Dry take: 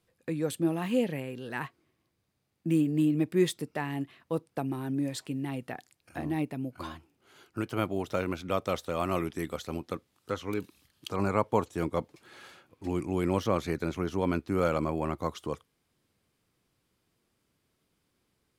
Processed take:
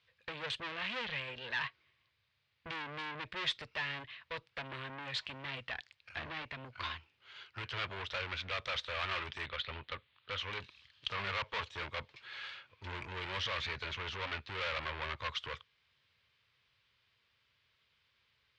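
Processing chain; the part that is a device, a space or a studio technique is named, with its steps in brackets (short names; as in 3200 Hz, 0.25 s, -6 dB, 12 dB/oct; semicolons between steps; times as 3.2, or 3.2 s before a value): 9.46–10.38 steep low-pass 4000 Hz; scooped metal amplifier (tube stage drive 38 dB, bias 0.7; speaker cabinet 100–3800 Hz, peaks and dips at 170 Hz -10 dB, 750 Hz -8 dB, 1300 Hz -3 dB; passive tone stack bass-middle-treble 10-0-10); gain +16 dB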